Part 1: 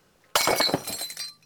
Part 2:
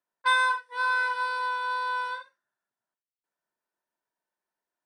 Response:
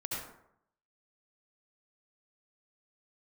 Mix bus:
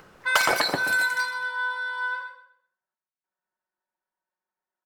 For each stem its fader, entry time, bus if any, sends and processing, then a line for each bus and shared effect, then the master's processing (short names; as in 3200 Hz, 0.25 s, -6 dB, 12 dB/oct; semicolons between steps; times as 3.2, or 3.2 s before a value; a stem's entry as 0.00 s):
-4.5 dB, 0.00 s, no send, echo send -13 dB, upward compressor, threshold -37 dBFS
-8.5 dB, 0.00 s, send -11.5 dB, echo send -7 dB, comb 5.4 ms, depth 93%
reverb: on, RT60 0.75 s, pre-delay 62 ms
echo: feedback echo 0.128 s, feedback 30%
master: bell 1400 Hz +7 dB 1.8 oct; mismatched tape noise reduction decoder only